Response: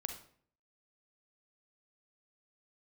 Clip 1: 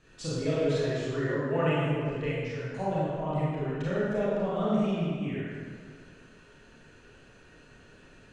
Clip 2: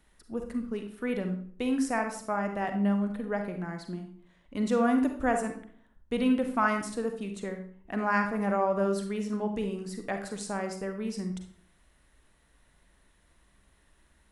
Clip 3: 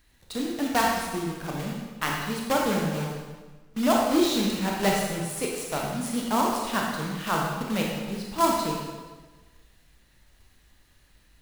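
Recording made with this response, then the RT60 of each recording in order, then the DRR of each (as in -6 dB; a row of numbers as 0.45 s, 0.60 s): 2; 1.8 s, 0.55 s, 1.3 s; -9.0 dB, 5.0 dB, -1.5 dB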